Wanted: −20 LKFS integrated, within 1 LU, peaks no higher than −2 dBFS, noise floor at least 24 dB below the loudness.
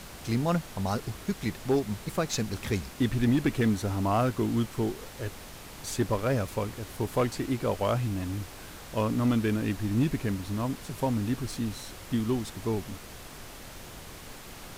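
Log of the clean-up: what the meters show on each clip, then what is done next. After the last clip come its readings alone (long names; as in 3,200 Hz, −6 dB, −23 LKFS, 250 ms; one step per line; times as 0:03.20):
share of clipped samples 0.4%; peaks flattened at −18.0 dBFS; background noise floor −45 dBFS; target noise floor −54 dBFS; integrated loudness −30.0 LKFS; sample peak −18.0 dBFS; target loudness −20.0 LKFS
→ clipped peaks rebuilt −18 dBFS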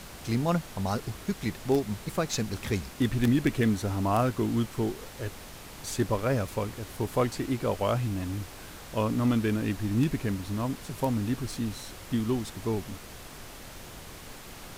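share of clipped samples 0.0%; background noise floor −45 dBFS; target noise floor −54 dBFS
→ noise reduction from a noise print 9 dB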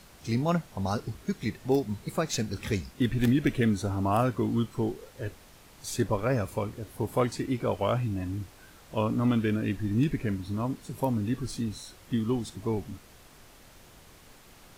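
background noise floor −54 dBFS; integrated loudness −30.0 LKFS; sample peak −10.5 dBFS; target loudness −20.0 LKFS
→ level +10 dB
brickwall limiter −2 dBFS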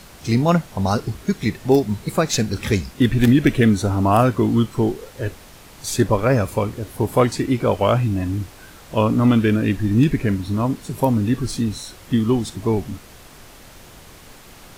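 integrated loudness −20.0 LKFS; sample peak −2.0 dBFS; background noise floor −44 dBFS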